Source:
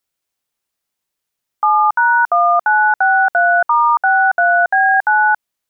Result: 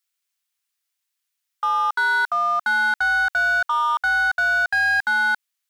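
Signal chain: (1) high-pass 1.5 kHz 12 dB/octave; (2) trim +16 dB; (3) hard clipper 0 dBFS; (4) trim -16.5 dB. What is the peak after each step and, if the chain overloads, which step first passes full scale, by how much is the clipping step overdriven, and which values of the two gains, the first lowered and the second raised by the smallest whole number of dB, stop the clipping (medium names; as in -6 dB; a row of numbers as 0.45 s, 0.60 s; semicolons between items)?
-11.5 dBFS, +4.5 dBFS, 0.0 dBFS, -16.5 dBFS; step 2, 4.5 dB; step 2 +11 dB, step 4 -11.5 dB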